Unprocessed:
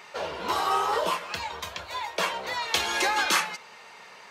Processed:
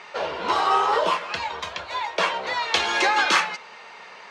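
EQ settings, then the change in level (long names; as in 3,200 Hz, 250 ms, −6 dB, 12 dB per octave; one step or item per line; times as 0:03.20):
high-frequency loss of the air 100 metres
low-shelf EQ 180 Hz −8.5 dB
+6.0 dB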